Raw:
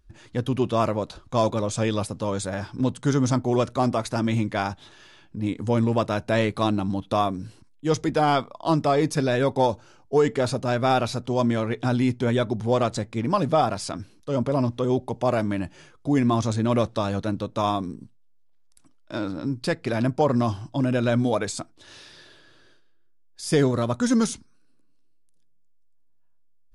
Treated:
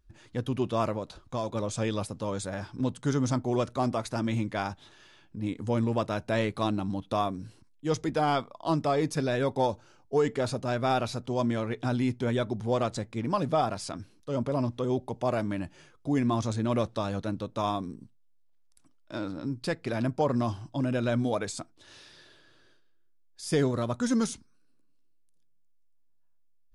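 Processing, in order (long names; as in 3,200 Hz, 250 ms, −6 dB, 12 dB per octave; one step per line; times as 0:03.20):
0:00.96–0:01.55: downward compressor 2.5 to 1, threshold −25 dBFS, peak gain reduction 6 dB
level −5.5 dB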